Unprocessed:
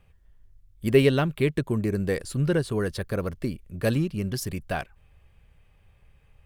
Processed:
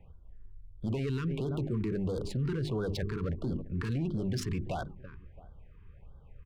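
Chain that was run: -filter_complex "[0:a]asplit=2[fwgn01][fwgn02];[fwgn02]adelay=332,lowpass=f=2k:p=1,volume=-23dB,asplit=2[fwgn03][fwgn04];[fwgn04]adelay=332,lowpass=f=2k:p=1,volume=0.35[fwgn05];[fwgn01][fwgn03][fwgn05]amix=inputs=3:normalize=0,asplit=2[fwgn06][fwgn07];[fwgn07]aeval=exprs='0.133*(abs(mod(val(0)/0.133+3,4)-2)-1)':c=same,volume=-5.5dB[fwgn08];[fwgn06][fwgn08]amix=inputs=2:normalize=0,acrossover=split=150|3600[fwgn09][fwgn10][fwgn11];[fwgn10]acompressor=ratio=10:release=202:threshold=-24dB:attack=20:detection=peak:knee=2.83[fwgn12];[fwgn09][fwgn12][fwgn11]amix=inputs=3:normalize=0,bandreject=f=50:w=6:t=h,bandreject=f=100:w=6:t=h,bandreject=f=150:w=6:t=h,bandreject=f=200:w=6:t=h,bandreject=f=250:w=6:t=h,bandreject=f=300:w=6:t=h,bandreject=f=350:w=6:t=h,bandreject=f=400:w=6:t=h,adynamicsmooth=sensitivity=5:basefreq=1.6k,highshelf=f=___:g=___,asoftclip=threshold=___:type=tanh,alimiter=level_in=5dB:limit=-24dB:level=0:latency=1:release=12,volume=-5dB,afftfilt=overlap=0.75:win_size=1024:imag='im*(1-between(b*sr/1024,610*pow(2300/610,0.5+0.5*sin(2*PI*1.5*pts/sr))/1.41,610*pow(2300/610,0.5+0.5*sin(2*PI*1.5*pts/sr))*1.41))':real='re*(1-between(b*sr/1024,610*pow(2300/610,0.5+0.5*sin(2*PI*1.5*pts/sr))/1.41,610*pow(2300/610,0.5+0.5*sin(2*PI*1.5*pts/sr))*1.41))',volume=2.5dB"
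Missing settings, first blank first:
11k, -5, -18.5dB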